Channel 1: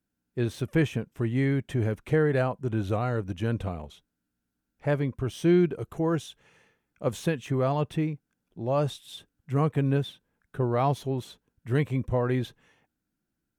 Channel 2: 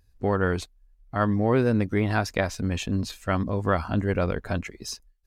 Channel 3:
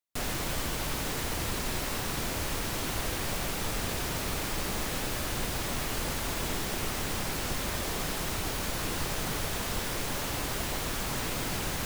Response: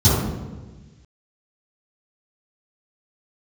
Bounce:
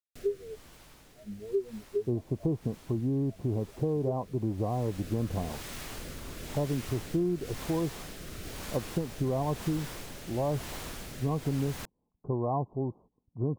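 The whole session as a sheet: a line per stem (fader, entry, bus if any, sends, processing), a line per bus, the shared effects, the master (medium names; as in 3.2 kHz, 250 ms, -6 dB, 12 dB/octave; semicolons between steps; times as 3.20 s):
+0.5 dB, 1.70 s, no send, gain riding within 4 dB 2 s; rippled Chebyshev low-pass 1.1 kHz, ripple 3 dB
-3.5 dB, 0.00 s, no send, peak limiter -15.5 dBFS, peak gain reduction 6.5 dB; small resonant body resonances 410/650/950/2900 Hz, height 9 dB, ringing for 45 ms; spectral contrast expander 4:1
-6.5 dB, 0.00 s, no send, rotary cabinet horn 1 Hz; auto duck -14 dB, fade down 0.50 s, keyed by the second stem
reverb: none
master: compression 5:1, threshold -26 dBFS, peak gain reduction 9 dB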